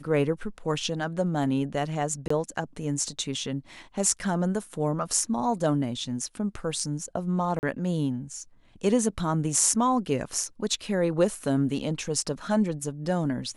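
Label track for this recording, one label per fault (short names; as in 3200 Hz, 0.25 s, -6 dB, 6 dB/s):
2.280000	2.300000	gap 24 ms
7.590000	7.630000	gap 39 ms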